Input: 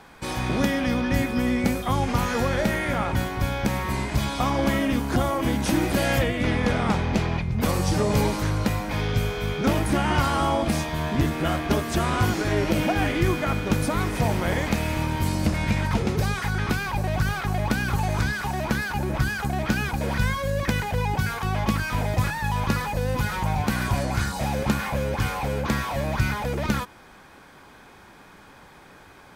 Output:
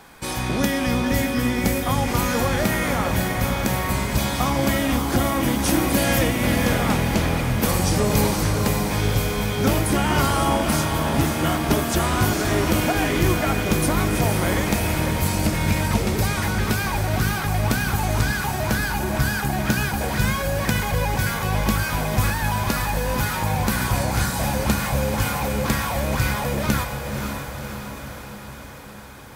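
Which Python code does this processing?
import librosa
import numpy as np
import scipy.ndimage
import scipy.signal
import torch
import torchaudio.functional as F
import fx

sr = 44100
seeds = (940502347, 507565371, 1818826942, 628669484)

y = fx.high_shelf(x, sr, hz=7200.0, db=11.5)
y = fx.echo_diffused(y, sr, ms=544, feedback_pct=62, wet_db=-6)
y = F.gain(torch.from_numpy(y), 1.0).numpy()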